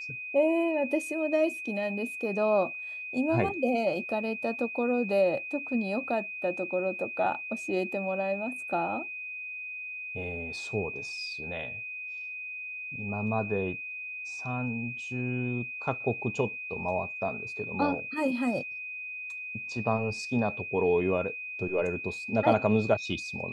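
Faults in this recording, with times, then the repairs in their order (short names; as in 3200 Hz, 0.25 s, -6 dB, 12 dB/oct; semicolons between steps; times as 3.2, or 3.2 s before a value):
tone 2500 Hz -36 dBFS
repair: notch 2500 Hz, Q 30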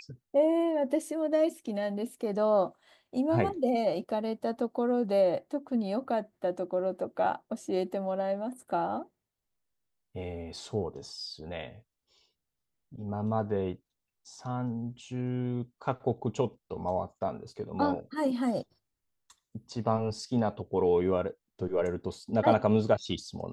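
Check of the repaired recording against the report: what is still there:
none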